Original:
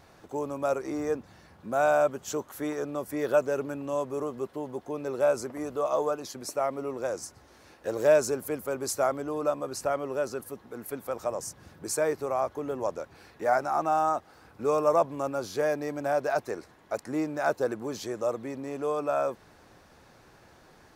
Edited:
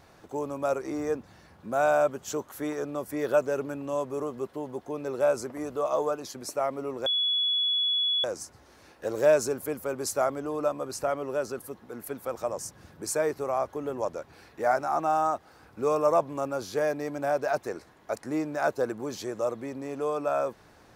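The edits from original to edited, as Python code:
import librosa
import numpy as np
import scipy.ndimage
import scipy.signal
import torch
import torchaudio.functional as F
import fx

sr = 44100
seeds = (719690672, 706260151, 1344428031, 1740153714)

y = fx.edit(x, sr, fx.insert_tone(at_s=7.06, length_s=1.18, hz=3390.0, db=-23.0), tone=tone)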